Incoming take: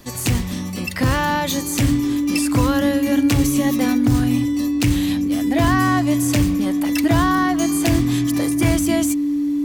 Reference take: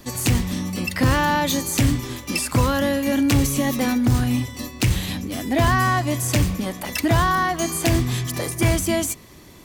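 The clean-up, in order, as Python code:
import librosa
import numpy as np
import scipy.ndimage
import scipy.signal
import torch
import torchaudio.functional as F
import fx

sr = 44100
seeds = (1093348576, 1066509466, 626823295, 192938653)

y = fx.notch(x, sr, hz=290.0, q=30.0)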